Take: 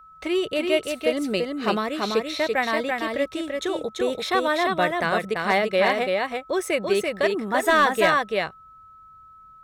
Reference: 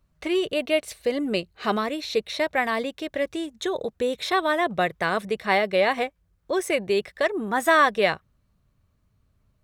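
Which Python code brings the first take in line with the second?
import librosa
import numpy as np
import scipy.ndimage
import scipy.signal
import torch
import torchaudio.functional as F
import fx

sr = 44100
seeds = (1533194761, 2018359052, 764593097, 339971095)

y = fx.fix_declip(x, sr, threshold_db=-11.0)
y = fx.notch(y, sr, hz=1300.0, q=30.0)
y = fx.fix_interpolate(y, sr, at_s=(5.34,), length_ms=15.0)
y = fx.fix_echo_inverse(y, sr, delay_ms=337, level_db=-3.5)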